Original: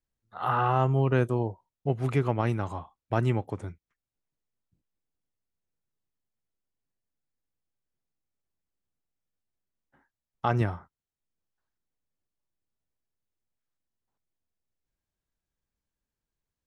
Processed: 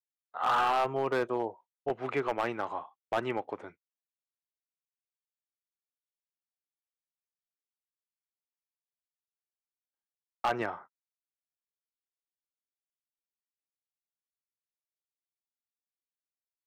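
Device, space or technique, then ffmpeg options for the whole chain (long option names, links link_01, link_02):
walkie-talkie: -af "highpass=460,lowpass=2900,asoftclip=type=hard:threshold=-24.5dB,agate=range=-38dB:threshold=-54dB:ratio=16:detection=peak,volume=2.5dB"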